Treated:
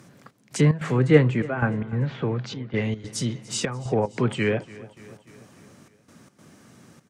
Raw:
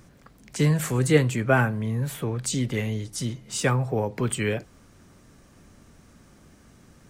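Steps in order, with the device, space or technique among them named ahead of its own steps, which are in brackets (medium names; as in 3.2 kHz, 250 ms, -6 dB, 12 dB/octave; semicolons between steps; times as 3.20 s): 1.70–2.82 s: Bessel low-pass 3.1 kHz, order 8; low-pass that closes with the level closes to 2.2 kHz, closed at -20 dBFS; high-pass 110 Hz 24 dB/octave; trance gate with a delay (trance gate "xxx..xx.xxx" 148 bpm -12 dB; feedback delay 291 ms, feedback 58%, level -20 dB); trim +3.5 dB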